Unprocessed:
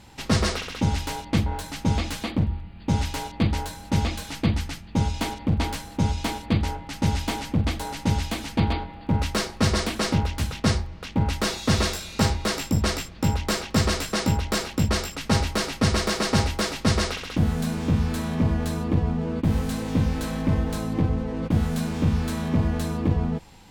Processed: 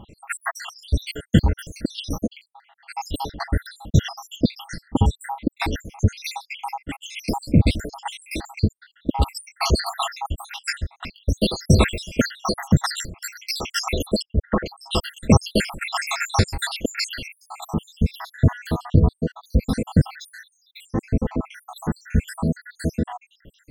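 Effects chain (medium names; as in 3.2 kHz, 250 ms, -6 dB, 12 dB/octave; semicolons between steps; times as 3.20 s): random holes in the spectrogram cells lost 82%; 14.22–14.66 s: steep low-pass 1.8 kHz 36 dB/octave; tape noise reduction on one side only decoder only; trim +8.5 dB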